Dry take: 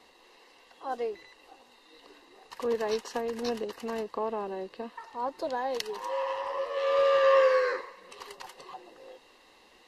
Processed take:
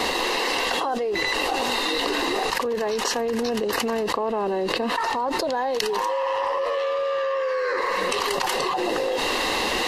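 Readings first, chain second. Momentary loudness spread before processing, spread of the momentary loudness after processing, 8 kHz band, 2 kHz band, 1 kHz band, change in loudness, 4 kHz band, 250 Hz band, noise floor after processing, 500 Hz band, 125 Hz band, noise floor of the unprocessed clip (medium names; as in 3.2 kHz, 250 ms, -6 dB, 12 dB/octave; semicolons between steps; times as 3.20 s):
23 LU, 2 LU, +17.5 dB, +12.0 dB, +9.5 dB, +5.5 dB, +16.5 dB, +12.0 dB, -26 dBFS, +4.5 dB, no reading, -59 dBFS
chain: level flattener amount 100%; trim -5 dB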